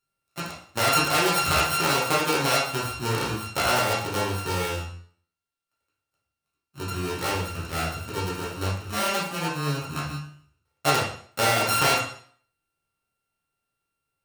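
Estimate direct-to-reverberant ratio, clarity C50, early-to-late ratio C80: -6.5 dB, 4.0 dB, 8.5 dB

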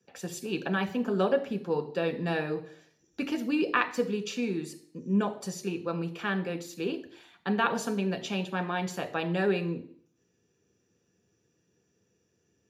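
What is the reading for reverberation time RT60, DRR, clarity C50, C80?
0.60 s, 5.0 dB, 13.5 dB, 16.5 dB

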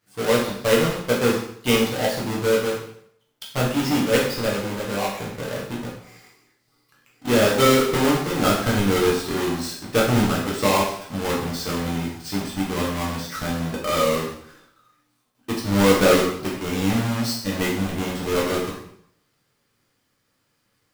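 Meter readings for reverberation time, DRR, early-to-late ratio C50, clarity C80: 0.65 s, -4.5 dB, 4.0 dB, 7.0 dB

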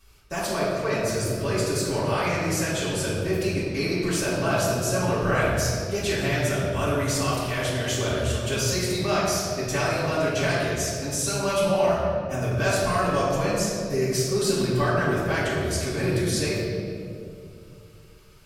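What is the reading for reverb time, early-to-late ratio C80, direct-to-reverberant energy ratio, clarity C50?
2.6 s, 1.0 dB, -10.5 dB, -1.5 dB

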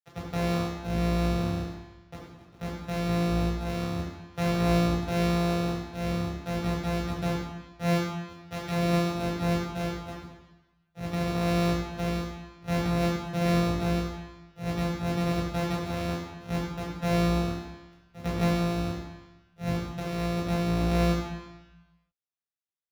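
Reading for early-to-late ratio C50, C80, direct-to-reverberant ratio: 1.5 dB, 3.5 dB, -3.0 dB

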